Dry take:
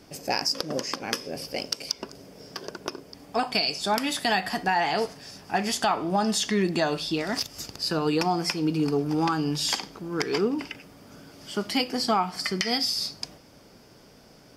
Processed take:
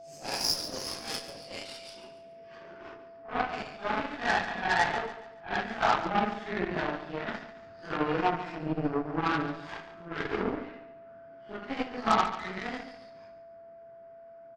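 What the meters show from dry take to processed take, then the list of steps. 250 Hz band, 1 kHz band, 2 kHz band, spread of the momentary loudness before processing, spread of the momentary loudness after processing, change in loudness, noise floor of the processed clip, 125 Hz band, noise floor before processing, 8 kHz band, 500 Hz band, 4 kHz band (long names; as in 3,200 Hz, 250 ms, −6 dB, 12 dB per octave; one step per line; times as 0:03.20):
−7.5 dB, −2.5 dB, −1.5 dB, 13 LU, 23 LU, −4.5 dB, −50 dBFS, −7.0 dB, −53 dBFS, −9.5 dB, −5.5 dB, −9.5 dB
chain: random phases in long frames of 200 ms
high-shelf EQ 9,700 Hz −6 dB
low-pass filter sweep 7,100 Hz → 1,600 Hz, 0:00.34–0:03.23
harmonic generator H 7 −20 dB, 8 −24 dB, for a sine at −8 dBFS
steady tone 670 Hz −42 dBFS
on a send: repeating echo 141 ms, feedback 36%, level −12 dB
on the sum: level −3.5 dB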